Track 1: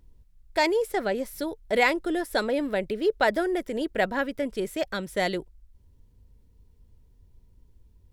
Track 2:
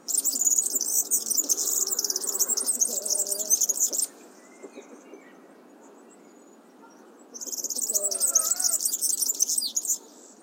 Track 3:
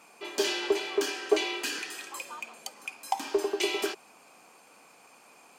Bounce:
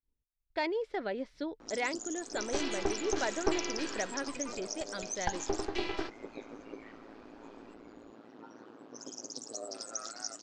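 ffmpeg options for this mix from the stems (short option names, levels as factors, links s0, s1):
-filter_complex "[0:a]volume=0.422[s0];[1:a]tremolo=f=110:d=0.857,adelay=1600,volume=1.33[s1];[2:a]equalizer=f=2900:t=o:w=0.8:g=-7,aecho=1:1:6:0.53,aeval=exprs='max(val(0),0)':c=same,adelay=2150,volume=0.891[s2];[s0][s1]amix=inputs=2:normalize=0,lowshelf=f=190:g=-7.5,acompressor=threshold=0.0251:ratio=1.5,volume=1[s3];[s2][s3]amix=inputs=2:normalize=0,lowpass=f=4700:w=0.5412,lowpass=f=4700:w=1.3066,equalizer=f=280:w=2.8:g=5.5,agate=range=0.0224:threshold=0.00178:ratio=3:detection=peak"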